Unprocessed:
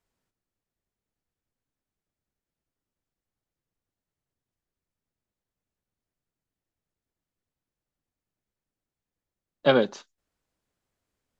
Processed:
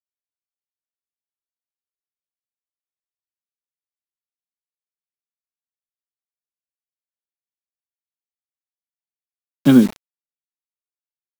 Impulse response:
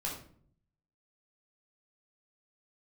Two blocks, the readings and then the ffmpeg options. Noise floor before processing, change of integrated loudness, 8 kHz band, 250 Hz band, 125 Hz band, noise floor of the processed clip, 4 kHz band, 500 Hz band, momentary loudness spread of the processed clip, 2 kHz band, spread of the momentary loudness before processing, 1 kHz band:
below −85 dBFS, +9.0 dB, can't be measured, +17.5 dB, +13.0 dB, below −85 dBFS, −0.5 dB, −3.0 dB, 8 LU, −1.5 dB, 7 LU, −3.5 dB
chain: -af "lowshelf=frequency=380:width_type=q:width=3:gain=12,acrusher=bits=4:mix=0:aa=0.000001,volume=-1dB"

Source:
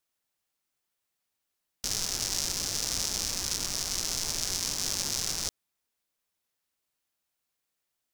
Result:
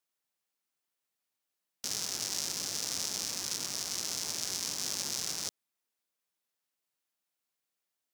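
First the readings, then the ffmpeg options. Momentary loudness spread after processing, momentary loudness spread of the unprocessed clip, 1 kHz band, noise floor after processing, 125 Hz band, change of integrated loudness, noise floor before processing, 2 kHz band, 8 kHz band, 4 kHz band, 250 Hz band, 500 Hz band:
2 LU, 2 LU, −4.0 dB, below −85 dBFS, −9.0 dB, −4.0 dB, −83 dBFS, −4.0 dB, −4.0 dB, −4.0 dB, −4.5 dB, −4.0 dB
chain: -af "highpass=140,volume=-4dB"

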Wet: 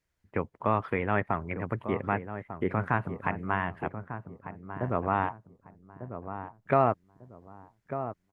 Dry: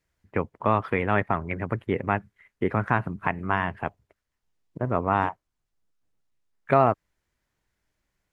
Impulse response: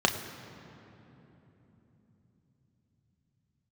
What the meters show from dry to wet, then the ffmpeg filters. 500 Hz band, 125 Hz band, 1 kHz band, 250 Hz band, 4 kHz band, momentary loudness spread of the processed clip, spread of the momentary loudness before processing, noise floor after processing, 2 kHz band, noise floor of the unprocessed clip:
−3.5 dB, −3.5 dB, −4.0 dB, −3.5 dB, can't be measured, 14 LU, 9 LU, −77 dBFS, −4.5 dB, −81 dBFS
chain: -filter_complex "[0:a]acrossover=split=3400[link_01][link_02];[link_02]acompressor=threshold=-58dB:ratio=4:attack=1:release=60[link_03];[link_01][link_03]amix=inputs=2:normalize=0,asplit=2[link_04][link_05];[link_05]adelay=1197,lowpass=frequency=1000:poles=1,volume=-9dB,asplit=2[link_06][link_07];[link_07]adelay=1197,lowpass=frequency=1000:poles=1,volume=0.31,asplit=2[link_08][link_09];[link_09]adelay=1197,lowpass=frequency=1000:poles=1,volume=0.31,asplit=2[link_10][link_11];[link_11]adelay=1197,lowpass=frequency=1000:poles=1,volume=0.31[link_12];[link_04][link_06][link_08][link_10][link_12]amix=inputs=5:normalize=0,volume=-4dB"

